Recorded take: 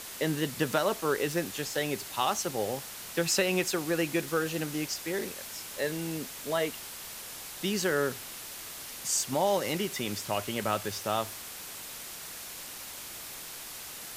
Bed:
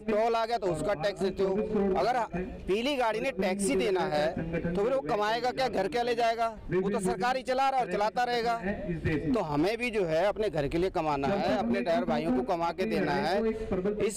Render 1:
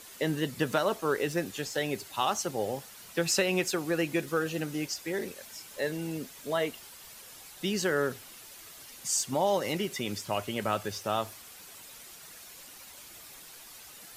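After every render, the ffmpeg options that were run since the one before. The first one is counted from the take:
-af "afftdn=nr=9:nf=-43"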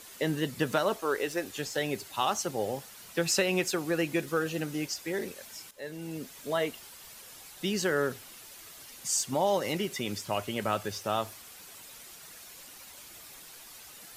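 -filter_complex "[0:a]asettb=1/sr,asplit=3[a][b][c];[a]atrim=end=0.964[d];[b]atrim=start=0.96:end=1.55,asetpts=PTS-STARTPTS,afade=t=in:d=0.004:c=qsin,afade=t=out:st=0.586:d=0.004:c=qsin,equalizer=f=160:w=1.5:g=-13[e];[c]atrim=start=1.546[f];[d][e]acrossfade=d=0.004:c1=hsin:c2=qsin[g];[g][f]acrossfade=d=0.004:c1=qsin:c2=hsin,asplit=2[h][i];[h]atrim=end=5.71,asetpts=PTS-STARTPTS,afade=t=out:st=5.706:d=0.004:c=hsin:silence=0.177828[j];[i]atrim=start=5.71,asetpts=PTS-STARTPTS,afade=t=in:d=0.63:silence=0.177828[k];[j][k]concat=n=2:v=0:a=1"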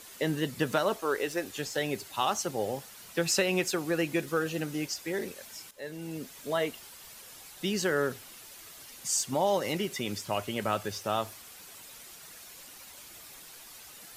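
-af anull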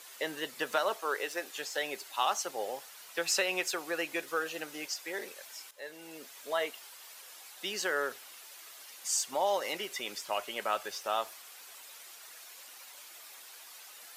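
-af "highpass=600,equalizer=f=10k:t=o:w=1.7:g=-2.5"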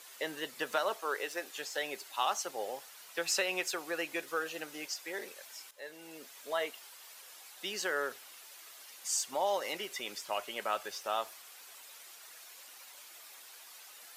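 -af "volume=-2dB"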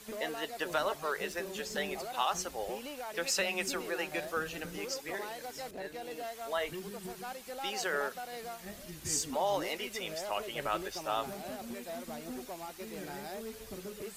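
-filter_complex "[1:a]volume=-14.5dB[a];[0:a][a]amix=inputs=2:normalize=0"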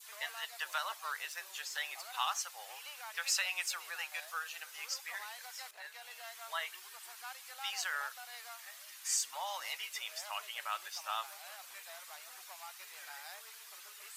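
-af "highpass=f=980:w=0.5412,highpass=f=980:w=1.3066,adynamicequalizer=threshold=0.00447:dfrequency=1600:dqfactor=0.86:tfrequency=1600:tqfactor=0.86:attack=5:release=100:ratio=0.375:range=2:mode=cutabove:tftype=bell"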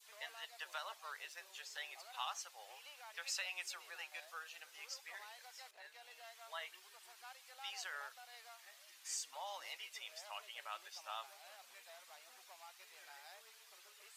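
-af "lowpass=f=2.4k:p=1,equalizer=f=1.3k:t=o:w=2:g=-8.5"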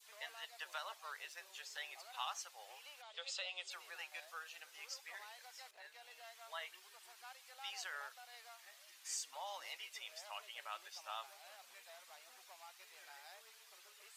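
-filter_complex "[0:a]asplit=3[a][b][c];[a]afade=t=out:st=3.01:d=0.02[d];[b]highpass=320,equalizer=f=520:t=q:w=4:g=8,equalizer=f=960:t=q:w=4:g=-5,equalizer=f=1.7k:t=q:w=4:g=-9,equalizer=f=2.4k:t=q:w=4:g=-6,equalizer=f=3.4k:t=q:w=4:g=9,equalizer=f=5.8k:t=q:w=4:g=-9,lowpass=f=7.2k:w=0.5412,lowpass=f=7.2k:w=1.3066,afade=t=in:st=3.01:d=0.02,afade=t=out:st=3.7:d=0.02[e];[c]afade=t=in:st=3.7:d=0.02[f];[d][e][f]amix=inputs=3:normalize=0"

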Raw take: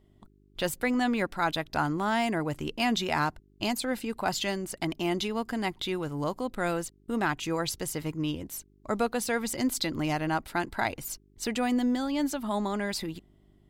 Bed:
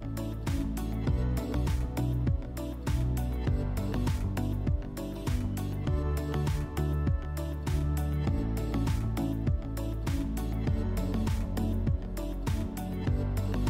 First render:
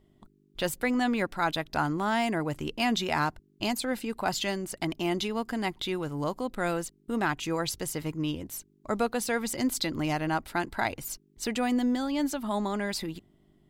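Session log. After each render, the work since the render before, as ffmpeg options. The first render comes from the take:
-af "bandreject=f=50:t=h:w=4,bandreject=f=100:t=h:w=4"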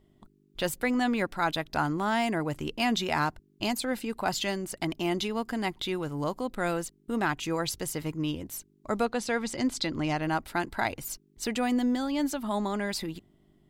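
-filter_complex "[0:a]asettb=1/sr,asplit=3[a][b][c];[a]atrim=end=9.054[d];[b]atrim=start=9.05:end=10.23,asetpts=PTS-STARTPTS,afade=t=in:d=0.004:c=qsin,afade=t=out:st=1.176:d=0.004:c=qsin,lowpass=7k[e];[c]atrim=start=10.226[f];[d][e]acrossfade=d=0.004:c1=hsin:c2=qsin[g];[g][f]acrossfade=d=0.004:c1=qsin:c2=hsin"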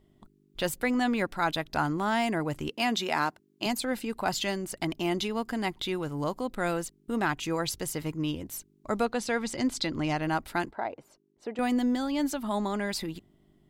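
-filter_complex "[0:a]asettb=1/sr,asplit=3[a][b][c];[a]atrim=end=2.694[d];[b]atrim=start=2.69:end=3.66,asetpts=PTS-STARTPTS,afade=t=in:d=0.004:c=qsin,afade=t=out:st=0.966:d=0.004:c=qsin,highpass=220[e];[c]atrim=start=3.656[f];[d][e]acrossfade=d=0.004:c1=hsin:c2=qsin[g];[g][f]acrossfade=d=0.004:c1=qsin:c2=hsin,asettb=1/sr,asplit=3[h][i][j];[h]atrim=end=10.714[k];[i]atrim=start=10.71:end=11.59,asetpts=PTS-STARTPTS,afade=t=in:d=0.004:c=qsin,afade=t=out:st=0.876:d=0.004:c=qsin,bandpass=f=560:t=q:w=1.2[l];[j]atrim=start=11.586[m];[k][l]acrossfade=d=0.004:c1=hsin:c2=qsin[n];[n][m]acrossfade=d=0.004:c1=qsin:c2=hsin"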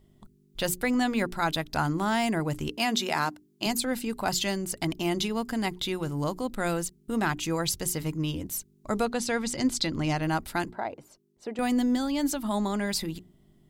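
-af "bass=f=250:g=5,treble=f=4k:g=6,bandreject=f=60:t=h:w=6,bandreject=f=120:t=h:w=6,bandreject=f=180:t=h:w=6,bandreject=f=240:t=h:w=6,bandreject=f=300:t=h:w=6,bandreject=f=360:t=h:w=6,bandreject=f=420:t=h:w=6"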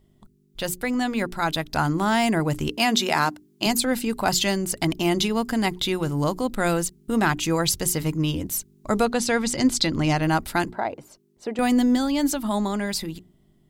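-af "dynaudnorm=f=460:g=7:m=6dB"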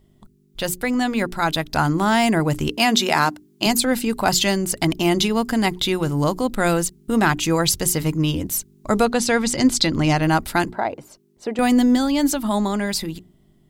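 -af "volume=3.5dB"

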